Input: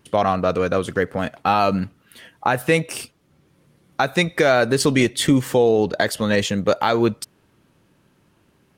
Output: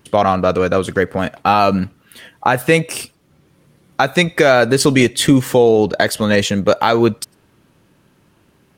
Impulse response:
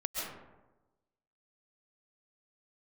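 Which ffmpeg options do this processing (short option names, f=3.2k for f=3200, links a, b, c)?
-filter_complex "[0:a]asplit=2[a][b];[1:a]atrim=start_sample=2205,afade=t=out:st=0.15:d=0.01,atrim=end_sample=7056,highshelf=f=12k:g=10.5[c];[b][c]afir=irnorm=-1:irlink=0,volume=-11.5dB[d];[a][d]amix=inputs=2:normalize=0,volume=3dB"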